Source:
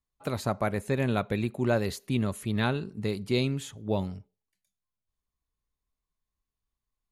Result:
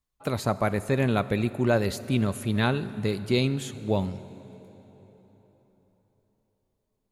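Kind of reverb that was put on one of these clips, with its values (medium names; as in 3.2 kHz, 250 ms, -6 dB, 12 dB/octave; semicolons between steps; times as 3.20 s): plate-style reverb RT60 4.3 s, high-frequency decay 0.7×, DRR 14.5 dB; trim +3 dB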